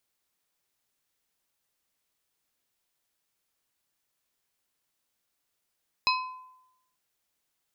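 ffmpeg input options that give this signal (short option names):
-f lavfi -i "aevalsrc='0.075*pow(10,-3*t/0.88)*sin(2*PI*1020*t)+0.0668*pow(10,-3*t/0.463)*sin(2*PI*2550*t)+0.0596*pow(10,-3*t/0.333)*sin(2*PI*4080*t)+0.0531*pow(10,-3*t/0.285)*sin(2*PI*5100*t)':d=0.89:s=44100"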